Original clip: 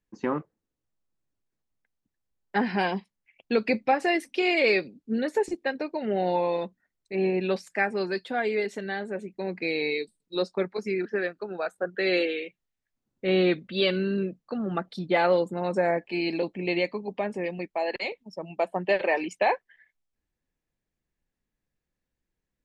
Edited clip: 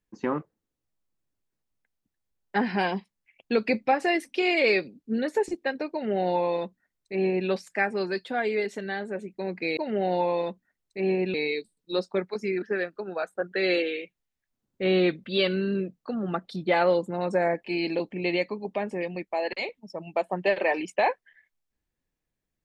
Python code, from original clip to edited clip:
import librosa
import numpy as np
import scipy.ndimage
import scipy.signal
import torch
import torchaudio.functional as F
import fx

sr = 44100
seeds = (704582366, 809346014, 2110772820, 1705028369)

y = fx.edit(x, sr, fx.duplicate(start_s=5.92, length_s=1.57, to_s=9.77), tone=tone)